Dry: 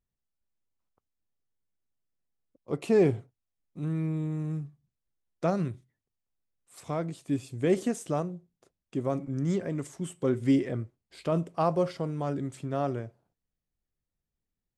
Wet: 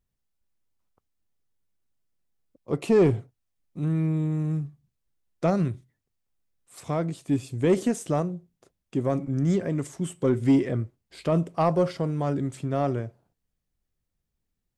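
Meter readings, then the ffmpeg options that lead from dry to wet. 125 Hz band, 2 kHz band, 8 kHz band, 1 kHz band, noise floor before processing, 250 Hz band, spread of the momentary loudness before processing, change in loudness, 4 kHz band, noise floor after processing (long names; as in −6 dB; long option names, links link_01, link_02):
+5.5 dB, +3.0 dB, +4.0 dB, +3.5 dB, below −85 dBFS, +4.5 dB, 12 LU, +4.0 dB, +3.5 dB, −81 dBFS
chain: -af "lowshelf=frequency=200:gain=3,asoftclip=type=tanh:threshold=-15dB,volume=4dB"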